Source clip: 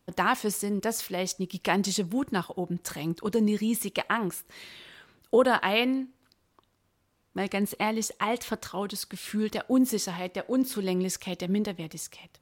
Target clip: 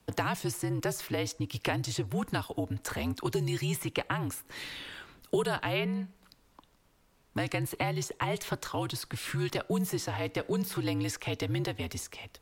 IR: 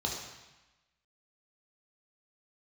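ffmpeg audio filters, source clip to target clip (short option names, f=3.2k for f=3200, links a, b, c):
-filter_complex "[0:a]acrossover=split=110|440|2600[a][b][c][d];[a]acompressor=threshold=-58dB:ratio=4[e];[b]acompressor=threshold=-41dB:ratio=4[f];[c]acompressor=threshold=-39dB:ratio=4[g];[d]acompressor=threshold=-46dB:ratio=4[h];[e][f][g][h]amix=inputs=4:normalize=0,afreqshift=-71,volume=5.5dB"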